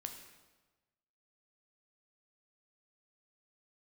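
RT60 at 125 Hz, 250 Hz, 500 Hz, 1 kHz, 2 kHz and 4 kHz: 1.4 s, 1.2 s, 1.3 s, 1.2 s, 1.1 s, 1.0 s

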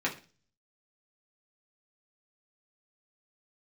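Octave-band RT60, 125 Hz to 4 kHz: 0.65 s, 0.45 s, 0.40 s, 0.35 s, 0.35 s, 0.40 s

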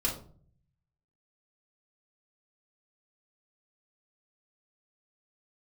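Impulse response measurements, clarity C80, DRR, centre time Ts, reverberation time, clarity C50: 12.5 dB, -4.0 dB, 24 ms, 0.50 s, 7.5 dB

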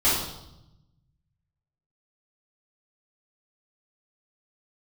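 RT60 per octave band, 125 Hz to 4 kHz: 1.9 s, 1.3 s, 0.95 s, 0.85 s, 0.65 s, 0.80 s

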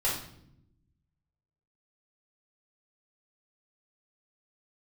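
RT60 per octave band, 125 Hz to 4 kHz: 1.6 s, 1.4 s, 0.85 s, 0.60 s, 0.55 s, 0.55 s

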